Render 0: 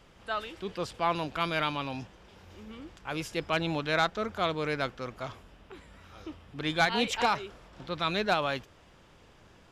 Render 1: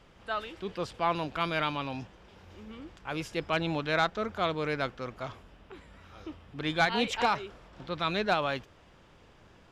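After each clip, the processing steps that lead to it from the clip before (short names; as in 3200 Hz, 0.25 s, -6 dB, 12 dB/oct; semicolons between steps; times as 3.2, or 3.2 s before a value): high shelf 6300 Hz -7 dB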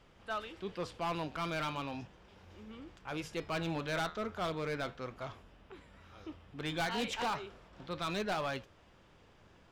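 flange 0.35 Hz, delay 8.1 ms, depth 4.8 ms, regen -78%; hard clip -30.5 dBFS, distortion -9 dB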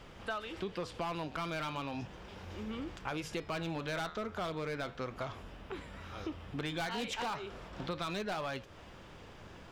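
compressor 10:1, threshold -45 dBFS, peak gain reduction 13 dB; gain +10 dB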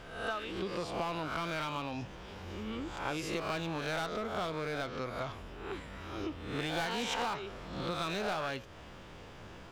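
spectral swells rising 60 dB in 0.73 s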